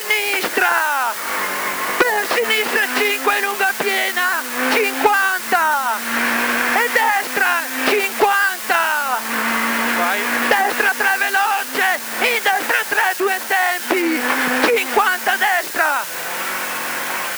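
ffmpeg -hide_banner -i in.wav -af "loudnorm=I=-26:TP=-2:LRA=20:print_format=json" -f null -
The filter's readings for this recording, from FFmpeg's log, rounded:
"input_i" : "-17.2",
"input_tp" : "-3.8",
"input_lra" : "1.4",
"input_thresh" : "-27.2",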